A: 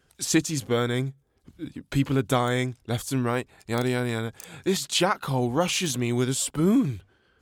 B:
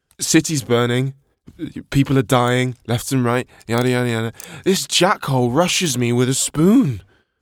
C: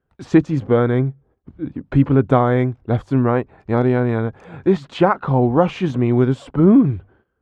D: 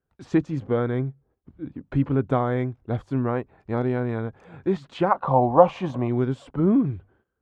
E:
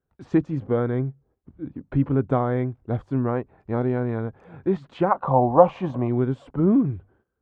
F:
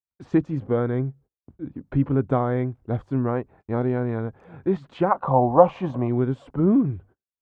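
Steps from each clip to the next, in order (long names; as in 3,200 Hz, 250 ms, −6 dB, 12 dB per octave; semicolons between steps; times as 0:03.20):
noise gate −60 dBFS, range −16 dB; level +8 dB
low-pass filter 1,200 Hz 12 dB per octave; level +1.5 dB
gain on a spectral selection 0:05.12–0:06.08, 510–1,200 Hz +11 dB; level −8 dB
high-shelf EQ 2,700 Hz −11 dB; level +1 dB
noise gate −48 dBFS, range −31 dB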